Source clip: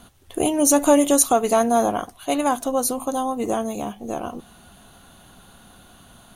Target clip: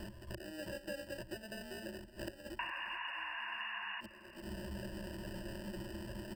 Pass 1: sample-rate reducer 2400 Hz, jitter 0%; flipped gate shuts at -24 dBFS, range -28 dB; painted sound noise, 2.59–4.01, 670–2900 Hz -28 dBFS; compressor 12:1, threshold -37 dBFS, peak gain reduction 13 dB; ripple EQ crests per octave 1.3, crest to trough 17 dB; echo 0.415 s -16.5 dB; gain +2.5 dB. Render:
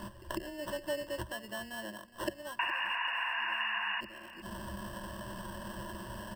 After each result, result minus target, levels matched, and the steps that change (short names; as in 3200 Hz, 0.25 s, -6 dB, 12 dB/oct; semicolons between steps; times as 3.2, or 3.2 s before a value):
sample-rate reducer: distortion -14 dB; compressor: peak gain reduction -8.5 dB
change: sample-rate reducer 1100 Hz, jitter 0%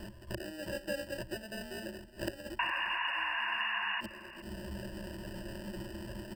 compressor: peak gain reduction -8 dB
change: compressor 12:1, threshold -46 dBFS, peak gain reduction 21.5 dB